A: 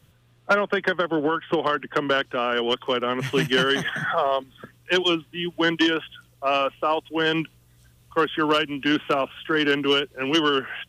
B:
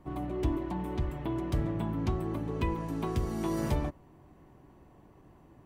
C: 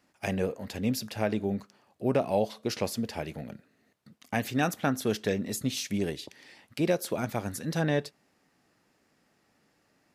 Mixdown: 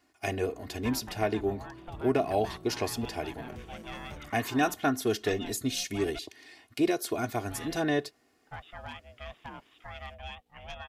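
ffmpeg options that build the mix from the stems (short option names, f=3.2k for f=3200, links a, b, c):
-filter_complex "[0:a]aeval=exprs='val(0)*sin(2*PI*360*n/s)':c=same,adelay=350,volume=-19dB,asplit=3[a][b][c];[a]atrim=end=6.19,asetpts=PTS-STARTPTS,afade=t=out:st=6.186:d=0.004:c=hsin[d];[b]atrim=start=6.19:end=7.41,asetpts=PTS-STARTPTS,volume=0[e];[c]atrim=start=7.41,asetpts=PTS-STARTPTS,afade=t=in:d=0.004:c=hsin[f];[d][e][f]concat=n=3:v=0:a=1[g];[1:a]adelay=400,volume=-16dB[h];[2:a]aecho=1:1:2.8:0.81,volume=-1.5dB[i];[g][h][i]amix=inputs=3:normalize=0"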